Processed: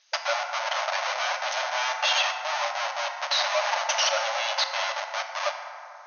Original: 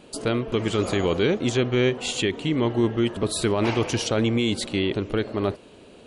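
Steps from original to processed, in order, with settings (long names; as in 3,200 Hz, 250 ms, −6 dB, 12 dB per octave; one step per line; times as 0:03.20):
spectral dynamics exaggerated over time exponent 2
dynamic equaliser 1,400 Hz, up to +5 dB, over −47 dBFS, Q 1.8
comparator with hysteresis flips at −35.5 dBFS
background noise blue −61 dBFS
linear-phase brick-wall band-pass 540–6,600 Hz
feedback delay network reverb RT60 3 s, high-frequency decay 0.35×, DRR 3.5 dB
level +7 dB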